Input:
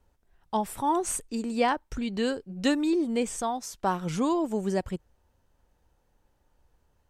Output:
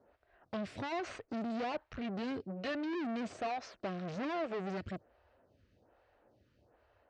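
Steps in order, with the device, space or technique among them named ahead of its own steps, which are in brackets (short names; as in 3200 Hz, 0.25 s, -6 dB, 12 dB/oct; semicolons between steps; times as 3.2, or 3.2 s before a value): vibe pedal into a guitar amplifier (photocell phaser 1.2 Hz; tube stage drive 44 dB, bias 0.3; speaker cabinet 97–4300 Hz, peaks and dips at 100 Hz +5 dB, 160 Hz -8 dB, 640 Hz +7 dB, 910 Hz -7 dB, 3400 Hz -5 dB); gain +8.5 dB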